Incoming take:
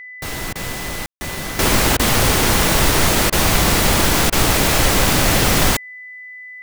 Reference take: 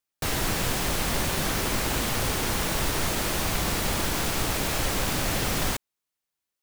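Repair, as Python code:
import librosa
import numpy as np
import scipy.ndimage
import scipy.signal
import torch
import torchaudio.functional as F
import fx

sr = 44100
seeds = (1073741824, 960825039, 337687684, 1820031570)

y = fx.notch(x, sr, hz=2000.0, q=30.0)
y = fx.fix_ambience(y, sr, seeds[0], print_start_s=5.78, print_end_s=6.28, start_s=1.06, end_s=1.21)
y = fx.fix_interpolate(y, sr, at_s=(0.53, 1.16, 1.97, 3.3, 4.3), length_ms=23.0)
y = fx.gain(y, sr, db=fx.steps((0.0, 0.0), (1.59, -11.5)))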